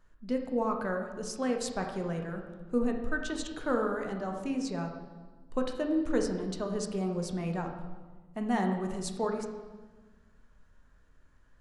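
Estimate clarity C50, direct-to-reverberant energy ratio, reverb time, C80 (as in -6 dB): 5.5 dB, 2.5 dB, 1.3 s, 7.5 dB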